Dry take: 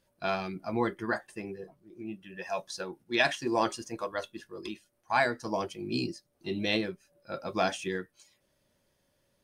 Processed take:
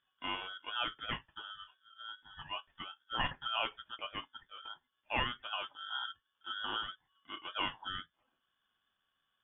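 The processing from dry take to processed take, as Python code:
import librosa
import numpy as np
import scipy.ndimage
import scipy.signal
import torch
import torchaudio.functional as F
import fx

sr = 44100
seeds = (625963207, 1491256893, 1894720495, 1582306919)

y = fx.freq_invert(x, sr, carrier_hz=2600)
y = y * np.sin(2.0 * np.pi * 910.0 * np.arange(len(y)) / sr)
y = y * 10.0 ** (-5.0 / 20.0)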